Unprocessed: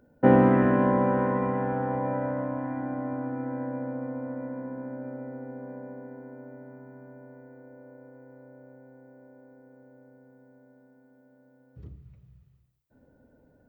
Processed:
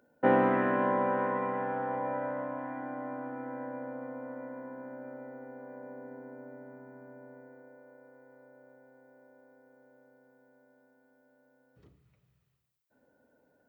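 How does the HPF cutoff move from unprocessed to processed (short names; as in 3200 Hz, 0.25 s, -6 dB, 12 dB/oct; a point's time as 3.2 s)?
HPF 6 dB/oct
5.71 s 690 Hz
6.14 s 310 Hz
7.37 s 310 Hz
7.84 s 820 Hz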